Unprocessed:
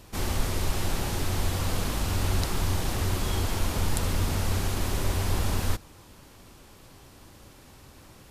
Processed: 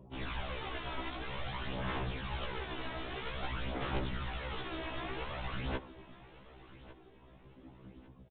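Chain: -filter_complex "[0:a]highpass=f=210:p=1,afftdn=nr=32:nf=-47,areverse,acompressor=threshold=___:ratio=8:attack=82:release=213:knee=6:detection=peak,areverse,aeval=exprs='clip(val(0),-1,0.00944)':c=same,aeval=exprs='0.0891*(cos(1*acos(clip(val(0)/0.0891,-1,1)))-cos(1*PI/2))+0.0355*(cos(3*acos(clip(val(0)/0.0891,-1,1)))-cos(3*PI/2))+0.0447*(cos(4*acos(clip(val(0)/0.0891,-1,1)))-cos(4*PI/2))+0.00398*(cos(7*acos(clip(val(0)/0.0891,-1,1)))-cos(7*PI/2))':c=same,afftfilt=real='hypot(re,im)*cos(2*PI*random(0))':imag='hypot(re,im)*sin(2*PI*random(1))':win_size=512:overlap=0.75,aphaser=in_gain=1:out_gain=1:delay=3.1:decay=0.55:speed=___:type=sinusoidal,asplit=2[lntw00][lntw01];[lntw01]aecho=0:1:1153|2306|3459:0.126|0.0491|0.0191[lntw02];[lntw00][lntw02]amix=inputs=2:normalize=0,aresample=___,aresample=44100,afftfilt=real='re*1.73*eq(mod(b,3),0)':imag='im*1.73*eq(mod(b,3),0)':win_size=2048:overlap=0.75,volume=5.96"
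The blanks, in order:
0.00794, 0.51, 8000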